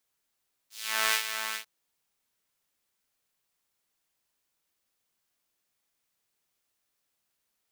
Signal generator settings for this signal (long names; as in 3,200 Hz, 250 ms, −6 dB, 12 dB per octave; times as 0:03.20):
subtractive patch with filter wobble A3, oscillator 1 saw, sub −9 dB, noise −15.5 dB, filter highpass, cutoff 1,600 Hz, Q 1.1, filter envelope 1.5 octaves, filter decay 0.22 s, filter sustain 10%, attack 434 ms, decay 0.09 s, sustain −9 dB, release 0.10 s, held 0.85 s, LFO 2.4 Hz, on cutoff 0.3 octaves